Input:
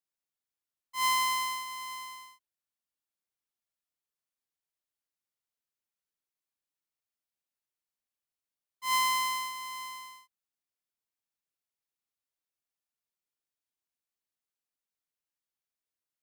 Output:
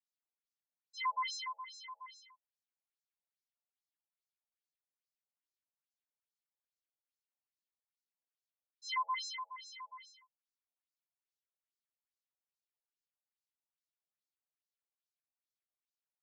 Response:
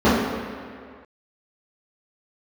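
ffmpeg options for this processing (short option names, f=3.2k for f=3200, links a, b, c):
-af "afftfilt=real='re*between(b*sr/1024,630*pow(5600/630,0.5+0.5*sin(2*PI*2.4*pts/sr))/1.41,630*pow(5600/630,0.5+0.5*sin(2*PI*2.4*pts/sr))*1.41)':imag='im*between(b*sr/1024,630*pow(5600/630,0.5+0.5*sin(2*PI*2.4*pts/sr))/1.41,630*pow(5600/630,0.5+0.5*sin(2*PI*2.4*pts/sr))*1.41)':win_size=1024:overlap=0.75,volume=-3dB"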